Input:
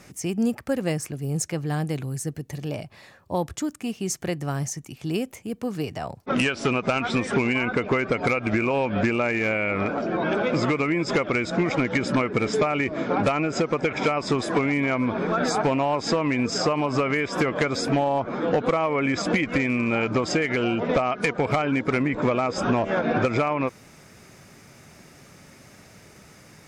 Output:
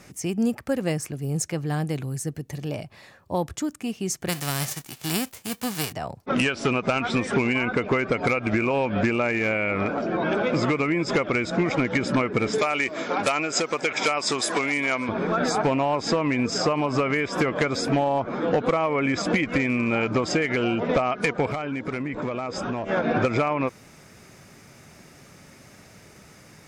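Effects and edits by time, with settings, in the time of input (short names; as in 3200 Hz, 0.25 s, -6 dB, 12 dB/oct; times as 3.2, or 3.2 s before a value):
4.28–5.91 spectral whitening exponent 0.3
12.58–15.09 RIAA curve recording
21.48–22.89 compressor 3:1, threshold -27 dBFS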